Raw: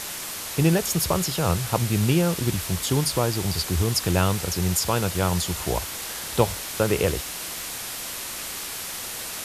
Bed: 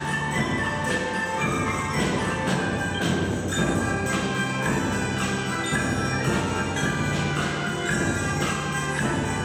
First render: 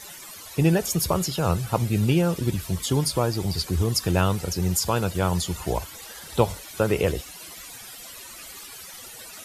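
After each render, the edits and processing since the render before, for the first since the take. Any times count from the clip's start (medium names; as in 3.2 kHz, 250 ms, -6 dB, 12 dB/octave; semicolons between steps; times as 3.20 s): noise reduction 15 dB, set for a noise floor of -34 dBFS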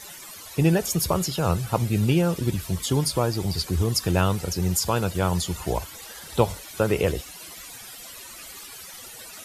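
no audible change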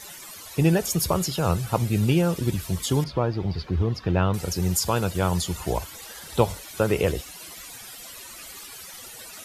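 3.04–4.34 s: distance through air 290 m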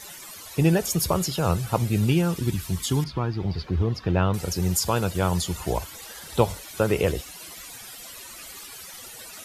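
2.07–3.39 s: peaking EQ 560 Hz -5.5 dB -> -13 dB 0.66 oct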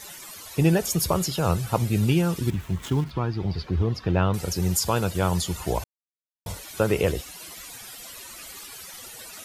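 2.50–3.11 s: median filter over 9 samples; 5.84–6.46 s: mute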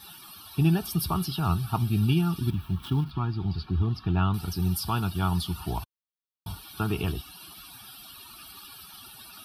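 static phaser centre 2 kHz, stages 6; comb of notches 510 Hz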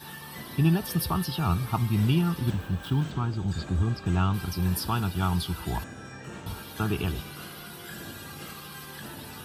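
add bed -17.5 dB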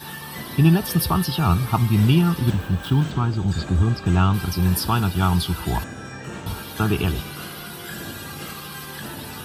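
trim +7 dB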